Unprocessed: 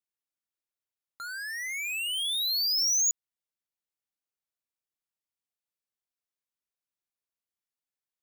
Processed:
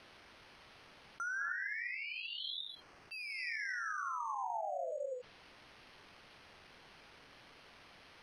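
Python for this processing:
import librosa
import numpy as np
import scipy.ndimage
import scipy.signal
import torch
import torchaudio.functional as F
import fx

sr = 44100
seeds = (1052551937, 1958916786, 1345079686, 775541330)

y = fx.spec_paint(x, sr, seeds[0], shape='fall', start_s=3.11, length_s=1.81, low_hz=490.0, high_hz=2700.0, level_db=-44.0)
y = fx.bass_treble(y, sr, bass_db=-5, treble_db=-10)
y = fx.rev_gated(y, sr, seeds[1], gate_ms=310, shape='rising', drr_db=-3.0)
y = fx.quant_dither(y, sr, seeds[2], bits=12, dither='triangular')
y = fx.env_lowpass_down(y, sr, base_hz=2200.0, full_db=-28.0)
y = np.repeat(scipy.signal.resample_poly(y, 1, 6), 6)[:len(y)]
y = fx.env_lowpass_down(y, sr, base_hz=1300.0, full_db=-31.0)
y = scipy.signal.sosfilt(scipy.signal.butter(2, 6100.0, 'lowpass', fs=sr, output='sos'), y)
y = fx.env_flatten(y, sr, amount_pct=50)
y = y * 10.0 ** (-1.5 / 20.0)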